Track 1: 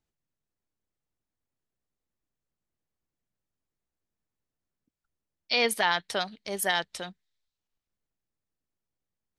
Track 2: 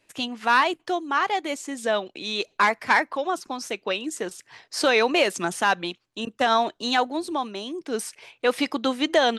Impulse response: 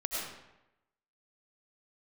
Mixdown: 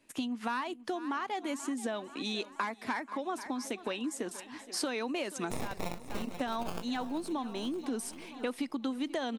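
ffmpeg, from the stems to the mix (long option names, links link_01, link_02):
-filter_complex "[0:a]acrusher=samples=22:mix=1:aa=0.000001:lfo=1:lforange=13.2:lforate=0.22,aeval=exprs='abs(val(0))':channel_layout=same,volume=0.5dB,asplit=3[link_01][link_02][link_03];[link_02]volume=-17.5dB[link_04];[1:a]equalizer=frequency=250:width_type=o:width=0.67:gain=12,equalizer=frequency=1000:width_type=o:width=0.67:gain=3,equalizer=frequency=10000:width_type=o:width=0.67:gain=6,volume=-5dB,asplit=2[link_05][link_06];[link_06]volume=-20.5dB[link_07];[link_03]apad=whole_len=413751[link_08];[link_05][link_08]sidechaincompress=threshold=-27dB:ratio=8:attack=42:release=589[link_09];[link_04][link_07]amix=inputs=2:normalize=0,aecho=0:1:481|962|1443|1924|2405|2886|3367|3848|4329:1|0.58|0.336|0.195|0.113|0.0656|0.0381|0.0221|0.0128[link_10];[link_01][link_09][link_10]amix=inputs=3:normalize=0,acompressor=threshold=-32dB:ratio=6"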